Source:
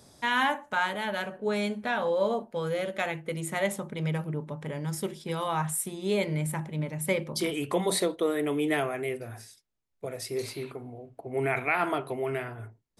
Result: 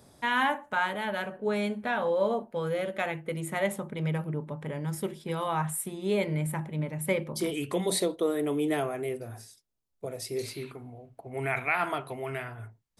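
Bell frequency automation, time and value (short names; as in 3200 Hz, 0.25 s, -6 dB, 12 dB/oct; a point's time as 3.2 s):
bell -7 dB 1.3 oct
7.33 s 5700 Hz
7.63 s 710 Hz
8.22 s 2100 Hz
10.08 s 2100 Hz
10.96 s 360 Hz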